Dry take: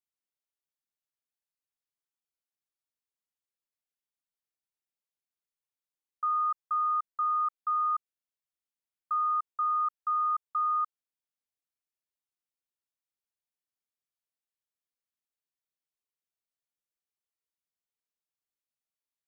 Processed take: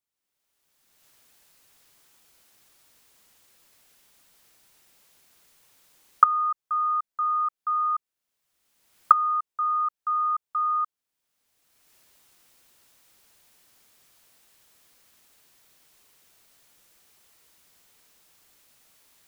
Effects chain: recorder AGC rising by 28 dB/s; trim +3 dB

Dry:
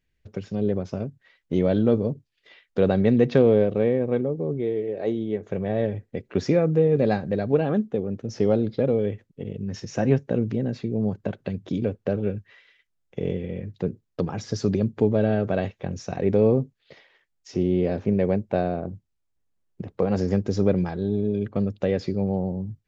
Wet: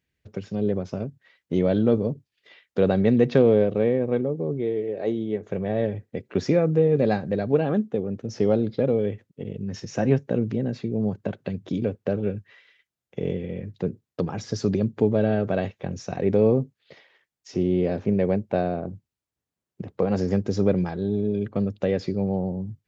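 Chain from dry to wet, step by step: high-pass 77 Hz

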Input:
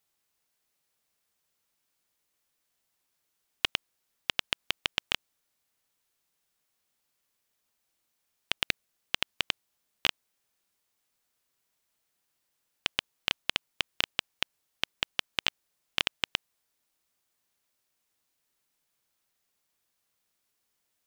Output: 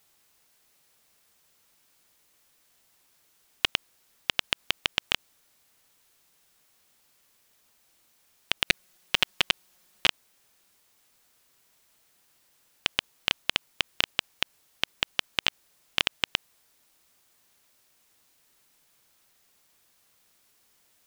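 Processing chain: 8.66–10.06 s: comb 5.5 ms, depth 78%; loudness maximiser +14 dB; trim -1 dB

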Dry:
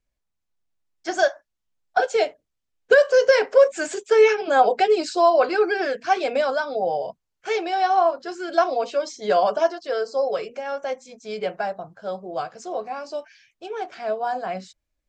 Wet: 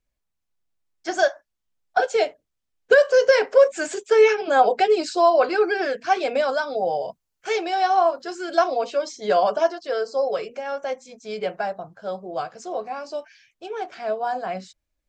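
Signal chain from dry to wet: 6.48–8.68 s: treble shelf 7.1 kHz +8 dB

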